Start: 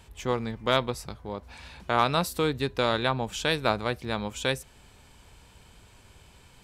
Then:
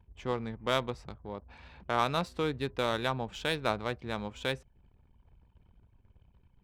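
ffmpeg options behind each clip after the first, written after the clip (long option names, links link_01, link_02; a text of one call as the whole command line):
ffmpeg -i in.wav -af "anlmdn=0.00251,adynamicsmooth=sensitivity=3:basefreq=3200,volume=-5dB" out.wav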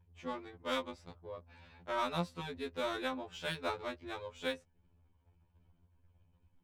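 ffmpeg -i in.wav -af "afftfilt=real='re*2*eq(mod(b,4),0)':imag='im*2*eq(mod(b,4),0)':win_size=2048:overlap=0.75,volume=-3.5dB" out.wav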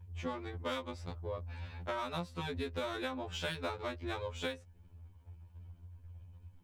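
ffmpeg -i in.wav -af "equalizer=frequency=88:width_type=o:width=0.35:gain=12.5,acompressor=threshold=-41dB:ratio=12,volume=7dB" out.wav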